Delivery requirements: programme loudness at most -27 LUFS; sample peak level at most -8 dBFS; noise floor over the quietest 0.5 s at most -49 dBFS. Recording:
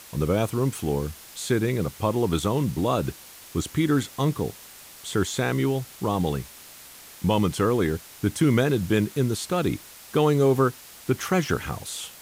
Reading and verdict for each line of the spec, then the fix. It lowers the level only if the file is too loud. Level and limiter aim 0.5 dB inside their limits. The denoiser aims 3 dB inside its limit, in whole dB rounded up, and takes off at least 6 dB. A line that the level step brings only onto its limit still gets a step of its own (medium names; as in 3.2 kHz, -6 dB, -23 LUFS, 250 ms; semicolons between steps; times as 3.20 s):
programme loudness -25.0 LUFS: fail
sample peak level -9.0 dBFS: pass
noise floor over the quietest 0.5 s -46 dBFS: fail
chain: noise reduction 6 dB, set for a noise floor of -46 dBFS; trim -2.5 dB